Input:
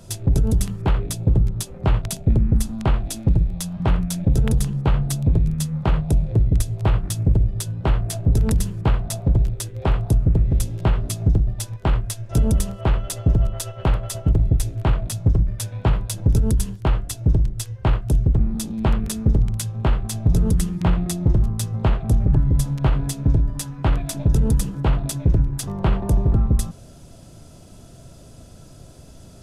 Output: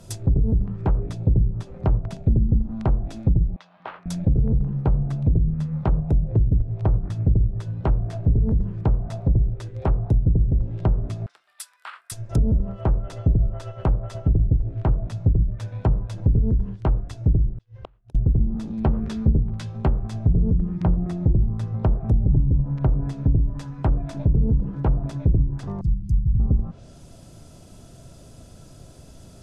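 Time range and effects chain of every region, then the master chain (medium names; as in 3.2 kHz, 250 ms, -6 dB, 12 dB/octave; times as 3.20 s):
3.56–4.06 s: high-pass 920 Hz + distance through air 250 m
11.26–12.12 s: Chebyshev high-pass 1.3 kHz, order 3 + peaking EQ 6.4 kHz -10 dB 0.3 oct
17.57–18.15 s: low-pass 4.8 kHz + compression 1.5:1, threshold -30 dBFS + inverted gate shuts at -23 dBFS, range -33 dB
18.83–19.93 s: dynamic bell 3.8 kHz, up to +7 dB, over -46 dBFS, Q 0.73 + doubling 13 ms -7.5 dB
25.81–26.40 s: brick-wall FIR band-stop 340–4600 Hz + companded quantiser 8-bit + static phaser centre 660 Hz, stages 4
whole clip: low-pass that closes with the level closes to 440 Hz, closed at -13 dBFS; dynamic bell 3.1 kHz, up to -6 dB, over -54 dBFS, Q 1.3; trim -1.5 dB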